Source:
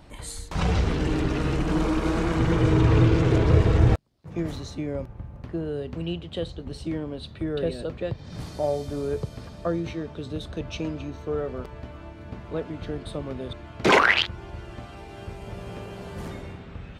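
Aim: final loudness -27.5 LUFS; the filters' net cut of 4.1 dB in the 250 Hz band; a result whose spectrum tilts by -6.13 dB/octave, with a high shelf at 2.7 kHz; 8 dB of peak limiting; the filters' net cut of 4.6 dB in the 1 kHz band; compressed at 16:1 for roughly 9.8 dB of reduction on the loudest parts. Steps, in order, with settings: peaking EQ 250 Hz -6 dB; peaking EQ 1 kHz -4.5 dB; treble shelf 2.7 kHz -6 dB; compression 16:1, threshold -23 dBFS; trim +7 dB; peak limiter -14.5 dBFS

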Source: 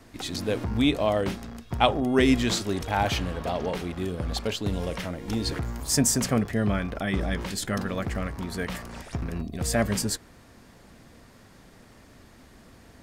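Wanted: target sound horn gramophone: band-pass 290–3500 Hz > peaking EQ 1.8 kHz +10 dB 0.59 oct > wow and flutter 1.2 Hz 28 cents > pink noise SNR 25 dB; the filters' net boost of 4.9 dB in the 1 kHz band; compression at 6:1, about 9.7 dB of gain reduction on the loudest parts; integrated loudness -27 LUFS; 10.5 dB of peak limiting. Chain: peaking EQ 1 kHz +5.5 dB; compression 6:1, threshold -23 dBFS; peak limiter -19 dBFS; band-pass 290–3500 Hz; peaking EQ 1.8 kHz +10 dB 0.59 oct; wow and flutter 1.2 Hz 28 cents; pink noise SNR 25 dB; trim +5 dB

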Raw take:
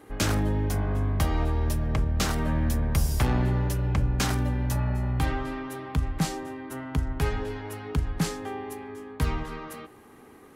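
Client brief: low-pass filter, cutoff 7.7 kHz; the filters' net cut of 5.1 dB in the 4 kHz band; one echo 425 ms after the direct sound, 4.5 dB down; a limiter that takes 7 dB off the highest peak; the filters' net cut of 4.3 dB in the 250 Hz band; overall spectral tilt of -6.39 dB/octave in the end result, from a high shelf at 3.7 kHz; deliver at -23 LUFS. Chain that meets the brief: low-pass 7.7 kHz; peaking EQ 250 Hz -6 dB; treble shelf 3.7 kHz -3.5 dB; peaking EQ 4 kHz -4 dB; peak limiter -21 dBFS; delay 425 ms -4.5 dB; trim +8 dB

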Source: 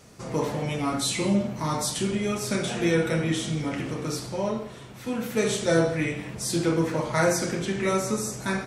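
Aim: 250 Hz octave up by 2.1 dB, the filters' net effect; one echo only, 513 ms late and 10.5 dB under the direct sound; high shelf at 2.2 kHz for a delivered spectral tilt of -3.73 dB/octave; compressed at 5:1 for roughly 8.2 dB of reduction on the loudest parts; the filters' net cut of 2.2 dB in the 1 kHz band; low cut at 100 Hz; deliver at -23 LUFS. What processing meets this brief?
high-pass 100 Hz; peaking EQ 250 Hz +3.5 dB; peaking EQ 1 kHz -5 dB; treble shelf 2.2 kHz +7.5 dB; compression 5:1, threshold -26 dBFS; delay 513 ms -10.5 dB; trim +6 dB

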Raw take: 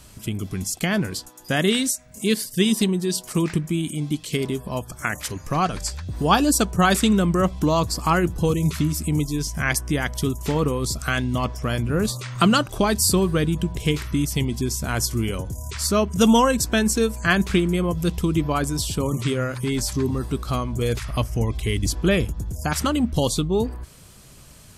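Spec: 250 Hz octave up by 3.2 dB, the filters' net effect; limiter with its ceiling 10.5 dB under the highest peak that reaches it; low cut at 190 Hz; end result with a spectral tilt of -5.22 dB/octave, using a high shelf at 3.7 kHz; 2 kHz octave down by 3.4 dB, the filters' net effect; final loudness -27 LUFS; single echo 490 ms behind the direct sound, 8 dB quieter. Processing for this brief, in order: high-pass 190 Hz; peaking EQ 250 Hz +6.5 dB; peaking EQ 2 kHz -3.5 dB; treble shelf 3.7 kHz -5 dB; peak limiter -15 dBFS; delay 490 ms -8 dB; trim -2 dB

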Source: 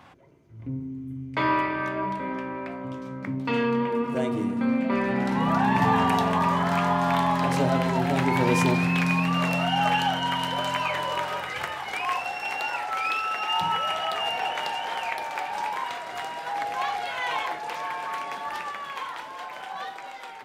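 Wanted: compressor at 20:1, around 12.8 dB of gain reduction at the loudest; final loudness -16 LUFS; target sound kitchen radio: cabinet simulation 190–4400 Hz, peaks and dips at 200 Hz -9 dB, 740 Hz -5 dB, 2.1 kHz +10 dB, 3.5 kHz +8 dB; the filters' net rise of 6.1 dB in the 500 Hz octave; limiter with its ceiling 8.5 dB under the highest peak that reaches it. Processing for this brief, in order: peaking EQ 500 Hz +9 dB; compression 20:1, threshold -26 dBFS; peak limiter -24.5 dBFS; cabinet simulation 190–4400 Hz, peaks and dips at 200 Hz -9 dB, 740 Hz -5 dB, 2.1 kHz +10 dB, 3.5 kHz +8 dB; trim +16.5 dB

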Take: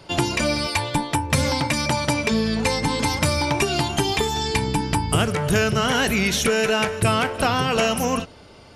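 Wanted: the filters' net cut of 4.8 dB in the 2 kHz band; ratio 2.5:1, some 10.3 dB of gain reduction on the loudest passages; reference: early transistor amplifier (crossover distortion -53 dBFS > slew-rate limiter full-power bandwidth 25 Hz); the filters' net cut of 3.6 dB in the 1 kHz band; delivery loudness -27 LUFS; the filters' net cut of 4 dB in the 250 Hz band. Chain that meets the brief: peaking EQ 250 Hz -5 dB; peaking EQ 1 kHz -3 dB; peaking EQ 2 kHz -5.5 dB; compression 2.5:1, threshold -34 dBFS; crossover distortion -53 dBFS; slew-rate limiter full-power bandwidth 25 Hz; trim +8.5 dB

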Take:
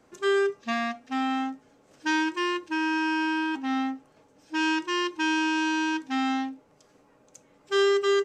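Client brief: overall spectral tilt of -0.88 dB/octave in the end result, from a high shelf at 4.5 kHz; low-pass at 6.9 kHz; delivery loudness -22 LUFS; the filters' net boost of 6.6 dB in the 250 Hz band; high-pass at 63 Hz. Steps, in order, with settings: high-pass 63 Hz; low-pass 6.9 kHz; peaking EQ 250 Hz +8.5 dB; treble shelf 4.5 kHz +6 dB; trim +1 dB

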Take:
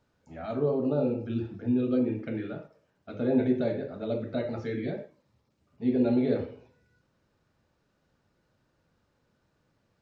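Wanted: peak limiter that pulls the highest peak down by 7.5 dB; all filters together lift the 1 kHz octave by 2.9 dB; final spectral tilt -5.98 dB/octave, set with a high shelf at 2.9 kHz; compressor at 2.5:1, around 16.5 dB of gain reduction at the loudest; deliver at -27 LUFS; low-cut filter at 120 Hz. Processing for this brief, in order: high-pass 120 Hz; peaking EQ 1 kHz +5.5 dB; treble shelf 2.9 kHz -8 dB; compression 2.5:1, threshold -47 dBFS; trim +20 dB; peak limiter -18 dBFS

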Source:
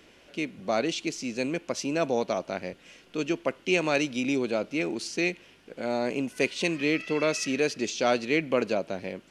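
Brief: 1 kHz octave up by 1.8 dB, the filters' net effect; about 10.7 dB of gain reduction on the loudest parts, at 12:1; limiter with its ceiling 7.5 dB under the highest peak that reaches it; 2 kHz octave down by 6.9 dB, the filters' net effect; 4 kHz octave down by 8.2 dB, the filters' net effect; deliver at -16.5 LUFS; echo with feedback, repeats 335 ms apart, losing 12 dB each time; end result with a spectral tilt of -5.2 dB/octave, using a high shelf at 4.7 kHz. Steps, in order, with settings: peaking EQ 1 kHz +5 dB; peaking EQ 2 kHz -6.5 dB; peaking EQ 4 kHz -4.5 dB; treble shelf 4.7 kHz -8.5 dB; compression 12:1, threshold -30 dBFS; peak limiter -25.5 dBFS; feedback delay 335 ms, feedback 25%, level -12 dB; trim +21 dB

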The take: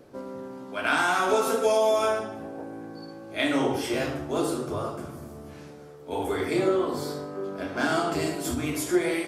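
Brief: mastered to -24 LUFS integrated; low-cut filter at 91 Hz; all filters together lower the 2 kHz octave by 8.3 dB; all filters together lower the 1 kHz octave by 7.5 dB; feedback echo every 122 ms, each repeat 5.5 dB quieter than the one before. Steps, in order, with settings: high-pass 91 Hz; peaking EQ 1 kHz -8.5 dB; peaking EQ 2 kHz -8 dB; feedback delay 122 ms, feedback 53%, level -5.5 dB; trim +4 dB

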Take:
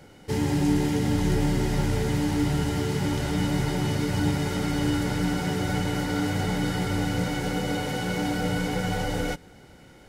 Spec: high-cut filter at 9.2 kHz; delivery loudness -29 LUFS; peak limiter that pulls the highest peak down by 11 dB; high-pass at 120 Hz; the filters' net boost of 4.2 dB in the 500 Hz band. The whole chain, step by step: high-pass 120 Hz; low-pass 9.2 kHz; peaking EQ 500 Hz +5 dB; trim +2.5 dB; peak limiter -20.5 dBFS

